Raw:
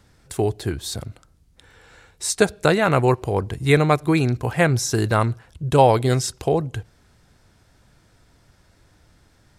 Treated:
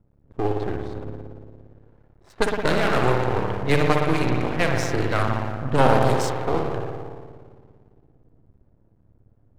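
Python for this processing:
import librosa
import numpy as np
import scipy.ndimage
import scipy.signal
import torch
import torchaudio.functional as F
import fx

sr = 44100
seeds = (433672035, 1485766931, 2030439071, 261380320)

y = fx.rev_spring(x, sr, rt60_s=2.4, pass_ms=(57,), chirp_ms=55, drr_db=0.0)
y = fx.env_lowpass(y, sr, base_hz=400.0, full_db=-10.5)
y = np.maximum(y, 0.0)
y = F.gain(torch.from_numpy(y), -1.0).numpy()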